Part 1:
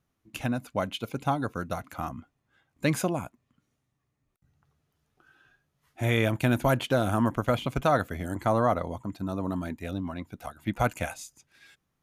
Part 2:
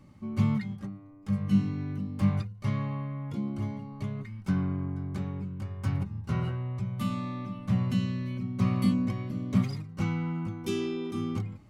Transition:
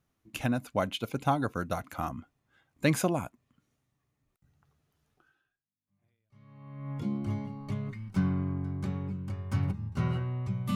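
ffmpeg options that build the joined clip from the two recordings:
-filter_complex "[0:a]apad=whole_dur=10.75,atrim=end=10.75,atrim=end=6.91,asetpts=PTS-STARTPTS[s0];[1:a]atrim=start=1.45:end=7.07,asetpts=PTS-STARTPTS[s1];[s0][s1]acrossfade=d=1.78:c1=exp:c2=exp"

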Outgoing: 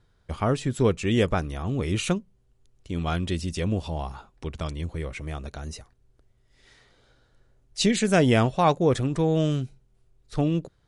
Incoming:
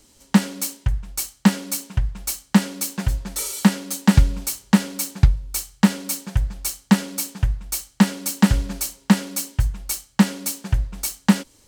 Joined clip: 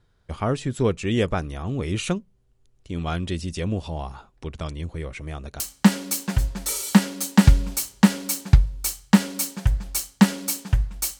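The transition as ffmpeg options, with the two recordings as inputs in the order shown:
-filter_complex "[0:a]apad=whole_dur=11.19,atrim=end=11.19,atrim=end=5.602[s0];[1:a]atrim=start=2.298:end=7.89[s1];[s0][s1]acrossfade=d=0.004:c1=hsin:c2=hsin"

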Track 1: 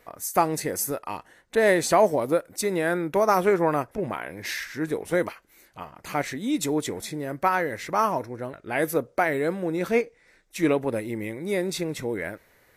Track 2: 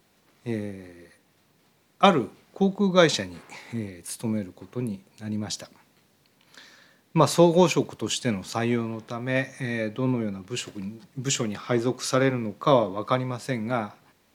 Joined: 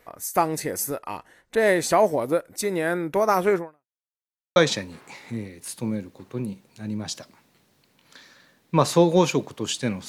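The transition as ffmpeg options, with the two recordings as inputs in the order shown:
-filter_complex "[0:a]apad=whole_dur=10.08,atrim=end=10.08,asplit=2[s0][s1];[s0]atrim=end=4.03,asetpts=PTS-STARTPTS,afade=t=out:st=3.58:d=0.45:c=exp[s2];[s1]atrim=start=4.03:end=4.56,asetpts=PTS-STARTPTS,volume=0[s3];[1:a]atrim=start=2.98:end=8.5,asetpts=PTS-STARTPTS,afade=t=in:d=0.004:c=hsin[s4];[s2][s3][s4]concat=n=3:v=0:a=1"

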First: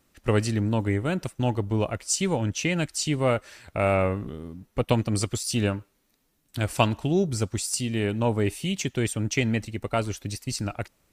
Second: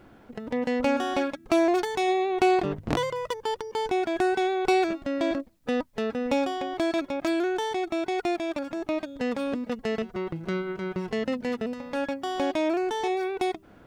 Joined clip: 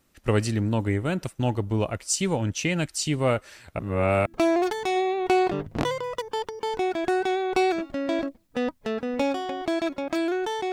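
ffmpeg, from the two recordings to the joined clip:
-filter_complex "[0:a]apad=whole_dur=10.72,atrim=end=10.72,asplit=2[s0][s1];[s0]atrim=end=3.792[s2];[s1]atrim=start=3.788:end=4.262,asetpts=PTS-STARTPTS,areverse[s3];[1:a]atrim=start=1.378:end=7.84[s4];[s2][s3]acrossfade=d=0.004:c1=hsin:c2=hsin[s5];[s5][s4]acrossfade=d=0.004:c1=hsin:c2=hsin"

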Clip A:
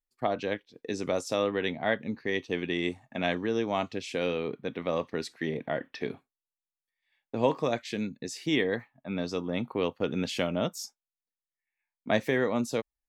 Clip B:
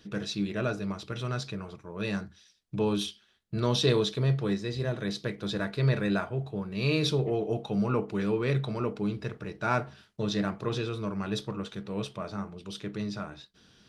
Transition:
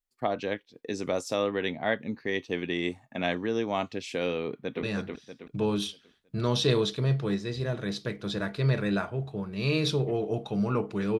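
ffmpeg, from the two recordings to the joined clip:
-filter_complex "[0:a]apad=whole_dur=11.19,atrim=end=11.19,atrim=end=4.832[s0];[1:a]atrim=start=2.018:end=8.38[s1];[s0][s1]acrossfade=d=0.004:c1=hsin:c2=hsin,asplit=2[s2][s3];[s3]afade=t=in:st=4.44:d=0.01,afade=t=out:st=4.83:d=0.01,aecho=0:1:320|640|960|1280|1600:0.707946|0.283178|0.113271|0.0453085|0.0181234[s4];[s2][s4]amix=inputs=2:normalize=0"

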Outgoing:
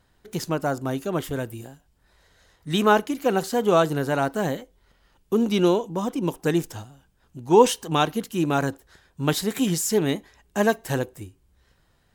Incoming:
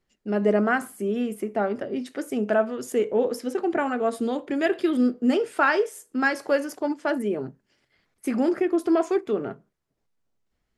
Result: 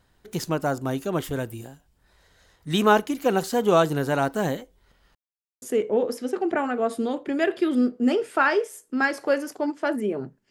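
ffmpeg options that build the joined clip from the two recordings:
-filter_complex "[0:a]apad=whole_dur=10.5,atrim=end=10.5,asplit=2[s0][s1];[s0]atrim=end=5.15,asetpts=PTS-STARTPTS,afade=t=out:st=5.146:d=0.004:c=hsin[s2];[s1]atrim=start=5.15:end=5.62,asetpts=PTS-STARTPTS,volume=0[s3];[1:a]atrim=start=2.84:end=7.72,asetpts=PTS-STARTPTS,afade=t=in:d=0.004:c=hsin[s4];[s2][s3][s4]concat=n=3:v=0:a=1"

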